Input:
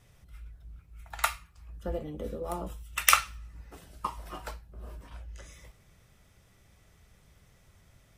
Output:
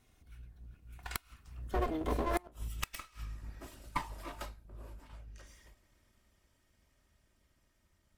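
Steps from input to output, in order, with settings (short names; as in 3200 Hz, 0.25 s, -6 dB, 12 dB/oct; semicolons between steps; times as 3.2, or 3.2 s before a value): minimum comb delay 3 ms; Doppler pass-by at 2.53, 24 m/s, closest 15 m; flipped gate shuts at -25 dBFS, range -30 dB; gain +7 dB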